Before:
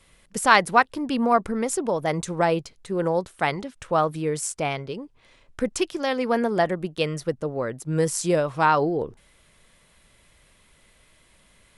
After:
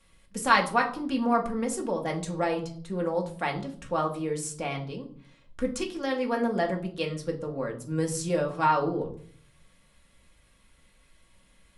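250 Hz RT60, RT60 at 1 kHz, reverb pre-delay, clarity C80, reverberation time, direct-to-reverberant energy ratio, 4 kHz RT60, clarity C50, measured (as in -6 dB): 0.80 s, 0.45 s, 4 ms, 16.0 dB, 0.55 s, 0.5 dB, 0.40 s, 12.5 dB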